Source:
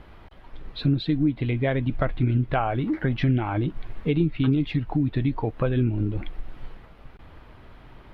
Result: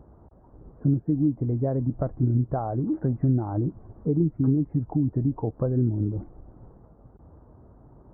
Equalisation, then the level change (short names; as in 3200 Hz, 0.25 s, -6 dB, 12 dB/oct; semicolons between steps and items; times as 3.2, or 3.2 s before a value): Gaussian blur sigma 9.7 samples; HPF 56 Hz; 0.0 dB